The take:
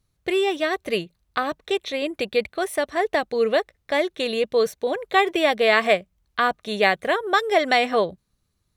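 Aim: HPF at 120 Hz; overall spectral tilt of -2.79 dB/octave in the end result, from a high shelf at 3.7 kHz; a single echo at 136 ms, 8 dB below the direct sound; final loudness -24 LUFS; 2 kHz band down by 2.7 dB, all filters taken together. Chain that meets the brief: high-pass 120 Hz; peaking EQ 2 kHz -4.5 dB; treble shelf 3.7 kHz +5 dB; delay 136 ms -8 dB; trim -1.5 dB

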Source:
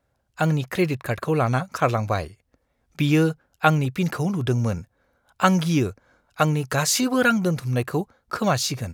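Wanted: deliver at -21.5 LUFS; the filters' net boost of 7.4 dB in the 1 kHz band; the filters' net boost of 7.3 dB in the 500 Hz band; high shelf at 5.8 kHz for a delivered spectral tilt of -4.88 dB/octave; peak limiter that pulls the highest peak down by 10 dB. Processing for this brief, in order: peaking EQ 500 Hz +6.5 dB; peaking EQ 1 kHz +8 dB; treble shelf 5.8 kHz +8 dB; trim -1 dB; peak limiter -7.5 dBFS

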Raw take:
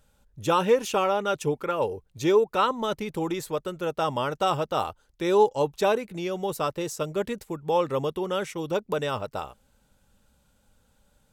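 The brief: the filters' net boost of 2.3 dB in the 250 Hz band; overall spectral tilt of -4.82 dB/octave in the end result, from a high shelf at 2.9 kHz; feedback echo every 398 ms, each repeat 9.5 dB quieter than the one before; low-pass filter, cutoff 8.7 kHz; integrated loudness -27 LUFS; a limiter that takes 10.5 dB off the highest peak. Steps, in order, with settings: low-pass 8.7 kHz; peaking EQ 250 Hz +3.5 dB; treble shelf 2.9 kHz +4.5 dB; peak limiter -19 dBFS; feedback delay 398 ms, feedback 33%, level -9.5 dB; trim +2 dB

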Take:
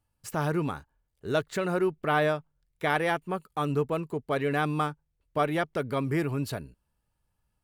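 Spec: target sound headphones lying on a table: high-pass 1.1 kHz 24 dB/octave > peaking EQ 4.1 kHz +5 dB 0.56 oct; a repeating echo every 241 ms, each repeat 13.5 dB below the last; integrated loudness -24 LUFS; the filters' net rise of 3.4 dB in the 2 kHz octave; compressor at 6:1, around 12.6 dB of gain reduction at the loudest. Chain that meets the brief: peaking EQ 2 kHz +4.5 dB; compression 6:1, threshold -34 dBFS; high-pass 1.1 kHz 24 dB/octave; peaking EQ 4.1 kHz +5 dB 0.56 oct; feedback delay 241 ms, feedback 21%, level -13.5 dB; trim +19.5 dB

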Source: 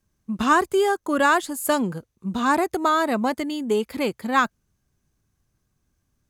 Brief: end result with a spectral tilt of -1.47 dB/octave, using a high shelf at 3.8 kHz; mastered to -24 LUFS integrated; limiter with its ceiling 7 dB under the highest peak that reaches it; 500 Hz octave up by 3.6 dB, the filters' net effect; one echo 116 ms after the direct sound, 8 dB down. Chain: peaking EQ 500 Hz +5 dB; treble shelf 3.8 kHz -8 dB; peak limiter -12.5 dBFS; delay 116 ms -8 dB; trim -2 dB

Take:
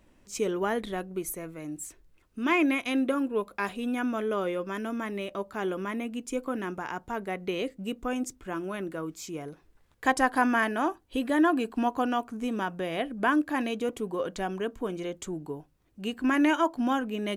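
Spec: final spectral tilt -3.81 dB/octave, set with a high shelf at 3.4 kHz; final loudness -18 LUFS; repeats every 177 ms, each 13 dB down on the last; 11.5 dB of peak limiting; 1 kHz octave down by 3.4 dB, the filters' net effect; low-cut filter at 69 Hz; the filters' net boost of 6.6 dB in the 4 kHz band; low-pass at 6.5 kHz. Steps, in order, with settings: high-pass 69 Hz; low-pass 6.5 kHz; peaking EQ 1 kHz -5.5 dB; treble shelf 3.4 kHz +9 dB; peaking EQ 4 kHz +4.5 dB; peak limiter -21 dBFS; feedback delay 177 ms, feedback 22%, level -13 dB; trim +14 dB

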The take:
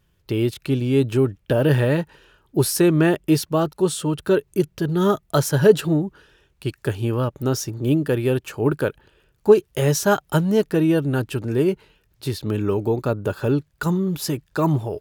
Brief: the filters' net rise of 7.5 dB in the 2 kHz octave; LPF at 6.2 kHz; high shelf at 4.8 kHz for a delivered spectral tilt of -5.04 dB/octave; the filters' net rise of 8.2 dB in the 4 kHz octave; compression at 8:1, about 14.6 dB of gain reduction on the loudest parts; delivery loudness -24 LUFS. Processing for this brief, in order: low-pass 6.2 kHz; peaking EQ 2 kHz +8 dB; peaking EQ 4 kHz +6 dB; treble shelf 4.8 kHz +6 dB; compression 8:1, threshold -22 dBFS; trim +3 dB

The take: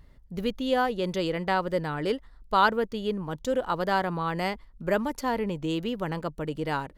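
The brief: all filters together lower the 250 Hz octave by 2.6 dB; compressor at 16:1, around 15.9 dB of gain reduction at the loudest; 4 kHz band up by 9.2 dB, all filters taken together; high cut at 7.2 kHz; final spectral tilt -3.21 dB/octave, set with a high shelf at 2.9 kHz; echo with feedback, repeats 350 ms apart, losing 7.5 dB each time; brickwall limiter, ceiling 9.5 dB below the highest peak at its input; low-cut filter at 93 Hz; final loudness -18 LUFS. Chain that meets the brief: high-pass 93 Hz; low-pass 7.2 kHz; peaking EQ 250 Hz -3.5 dB; treble shelf 2.9 kHz +9 dB; peaking EQ 4 kHz +5.5 dB; compression 16:1, threshold -29 dBFS; peak limiter -25.5 dBFS; feedback delay 350 ms, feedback 42%, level -7.5 dB; trim +18 dB

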